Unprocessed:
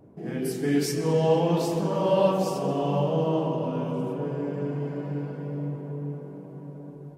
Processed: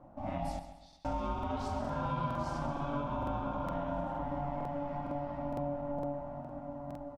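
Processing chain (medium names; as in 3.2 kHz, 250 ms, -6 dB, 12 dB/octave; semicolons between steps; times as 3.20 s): compression 5:1, threshold -30 dBFS, peak gain reduction 12.5 dB; 0.59–1.05 s: band-pass filter 4 kHz, Q 17; ring modulator 430 Hz; distance through air 73 m; feedback delay 134 ms, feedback 43%, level -11.5 dB; crackling interface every 0.46 s, samples 2048, repeat, from 0.88 s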